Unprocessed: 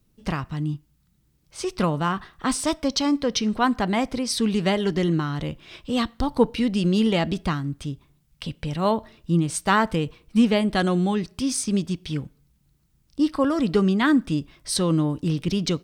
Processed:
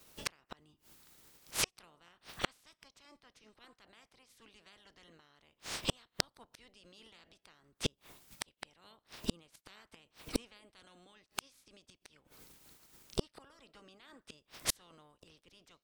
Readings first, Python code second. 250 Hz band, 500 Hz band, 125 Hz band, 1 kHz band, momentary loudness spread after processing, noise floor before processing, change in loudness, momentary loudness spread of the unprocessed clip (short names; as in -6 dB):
-27.5 dB, -23.0 dB, -25.0 dB, -23.5 dB, 22 LU, -65 dBFS, -16.0 dB, 11 LU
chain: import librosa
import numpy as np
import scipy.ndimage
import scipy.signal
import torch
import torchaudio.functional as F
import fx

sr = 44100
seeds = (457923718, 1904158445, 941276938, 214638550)

y = fx.spec_clip(x, sr, under_db=27)
y = fx.gate_flip(y, sr, shuts_db=-19.0, range_db=-42)
y = y * 10.0 ** (3.0 / 20.0)